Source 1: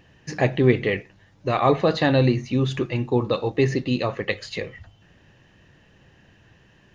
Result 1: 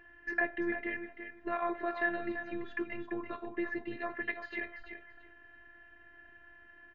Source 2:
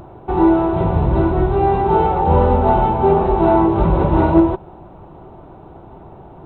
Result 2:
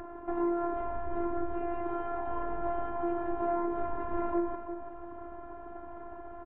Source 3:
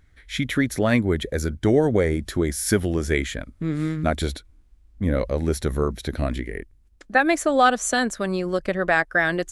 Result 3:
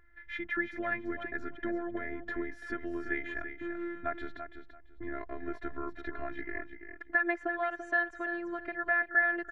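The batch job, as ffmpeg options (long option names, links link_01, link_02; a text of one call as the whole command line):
ffmpeg -i in.wav -filter_complex "[0:a]acompressor=threshold=-31dB:ratio=2.5,afftfilt=real='hypot(re,im)*cos(PI*b)':imag='0':win_size=512:overlap=0.75,lowpass=frequency=1700:width_type=q:width=3.9,asplit=2[link_01][link_02];[link_02]aecho=0:1:338|676|1014:0.355|0.0674|0.0128[link_03];[link_01][link_03]amix=inputs=2:normalize=0,volume=-3dB" out.wav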